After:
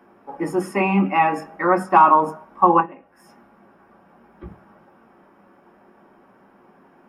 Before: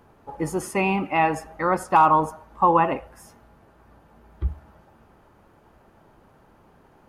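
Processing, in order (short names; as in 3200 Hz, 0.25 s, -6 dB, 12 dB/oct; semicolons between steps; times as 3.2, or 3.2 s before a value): 2.8–4.43 compressor 4:1, threshold -43 dBFS, peak gain reduction 22 dB; reverb RT60 0.15 s, pre-delay 3 ms, DRR 2 dB; gain -6 dB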